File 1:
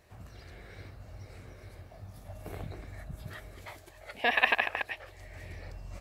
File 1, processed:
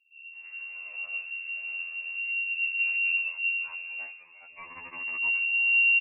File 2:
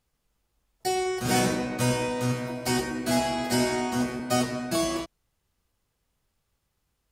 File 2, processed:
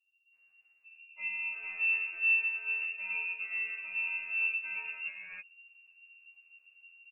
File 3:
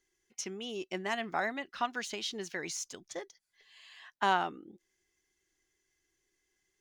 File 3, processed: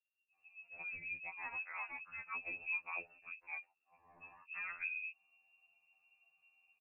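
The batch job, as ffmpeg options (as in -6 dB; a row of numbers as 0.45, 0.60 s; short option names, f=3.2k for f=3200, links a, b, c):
-filter_complex "[0:a]areverse,acompressor=threshold=-39dB:ratio=6,areverse,asubboost=boost=11.5:cutoff=240,acrossover=split=180[a][b];[b]adelay=340[c];[a][c]amix=inputs=2:normalize=0,lowpass=f=2.4k:t=q:w=0.5098,lowpass=f=2.4k:t=q:w=0.6013,lowpass=f=2.4k:t=q:w=0.9,lowpass=f=2.4k:t=q:w=2.563,afreqshift=-2800,afftfilt=real='re*2*eq(mod(b,4),0)':imag='im*2*eq(mod(b,4),0)':win_size=2048:overlap=0.75"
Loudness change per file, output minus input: +4.5, -4.5, -7.5 LU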